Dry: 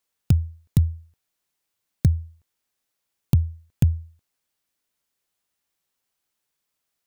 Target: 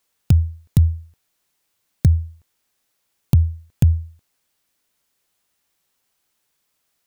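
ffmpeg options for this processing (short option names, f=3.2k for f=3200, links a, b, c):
-af "alimiter=limit=-12dB:level=0:latency=1:release=86,volume=8dB"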